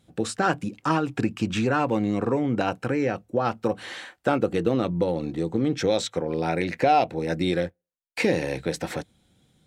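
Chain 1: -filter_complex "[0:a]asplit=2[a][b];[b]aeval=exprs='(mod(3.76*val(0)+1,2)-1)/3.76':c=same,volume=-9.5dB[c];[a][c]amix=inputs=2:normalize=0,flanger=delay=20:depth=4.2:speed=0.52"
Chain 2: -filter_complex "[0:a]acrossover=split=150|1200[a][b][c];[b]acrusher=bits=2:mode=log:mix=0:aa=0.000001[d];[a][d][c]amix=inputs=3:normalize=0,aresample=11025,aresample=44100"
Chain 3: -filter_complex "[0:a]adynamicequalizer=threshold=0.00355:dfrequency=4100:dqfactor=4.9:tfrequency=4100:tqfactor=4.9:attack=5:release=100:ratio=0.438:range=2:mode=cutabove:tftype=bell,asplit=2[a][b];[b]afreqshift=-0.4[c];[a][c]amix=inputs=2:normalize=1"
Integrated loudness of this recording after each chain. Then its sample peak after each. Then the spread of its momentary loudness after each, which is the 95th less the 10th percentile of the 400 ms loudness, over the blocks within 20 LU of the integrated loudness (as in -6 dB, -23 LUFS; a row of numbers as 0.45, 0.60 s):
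-26.0, -25.5, -28.0 LUFS; -9.5, -7.5, -10.5 dBFS; 8, 7, 8 LU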